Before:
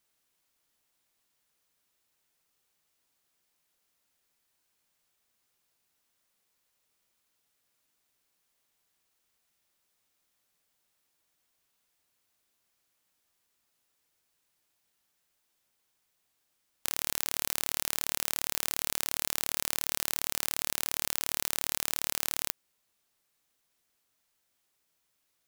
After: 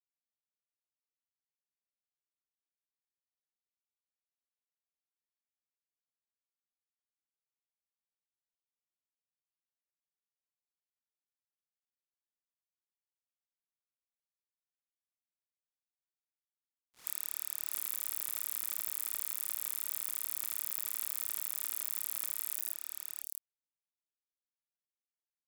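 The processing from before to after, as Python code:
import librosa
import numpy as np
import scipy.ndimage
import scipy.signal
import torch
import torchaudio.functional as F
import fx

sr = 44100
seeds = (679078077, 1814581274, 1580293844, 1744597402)

p1 = fx.spec_delay(x, sr, highs='late', ms=214)
p2 = scipy.signal.sosfilt(scipy.signal.butter(4, 820.0, 'highpass', fs=sr, output='sos'), p1)
p3 = np.sign(p2) * np.maximum(np.abs(p2) - 10.0 ** (-36.5 / 20.0), 0.0)
p4 = fx.vibrato(p3, sr, rate_hz=4.2, depth_cents=24.0)
p5 = fx.dereverb_blind(p4, sr, rt60_s=0.62)
p6 = p5 + fx.echo_single(p5, sr, ms=663, db=-4.0, dry=0)
y = F.gain(torch.from_numpy(p6), -1.5).numpy()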